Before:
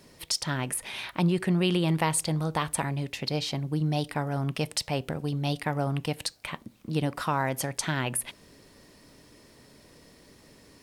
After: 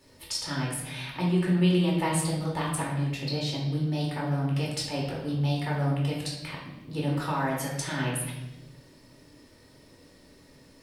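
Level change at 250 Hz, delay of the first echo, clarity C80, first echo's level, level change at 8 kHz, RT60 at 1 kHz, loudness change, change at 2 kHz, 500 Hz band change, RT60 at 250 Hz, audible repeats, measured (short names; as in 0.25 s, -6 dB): +1.5 dB, none, 5.5 dB, none, -3.0 dB, 0.85 s, +0.5 dB, -1.5 dB, -0.5 dB, 1.6 s, none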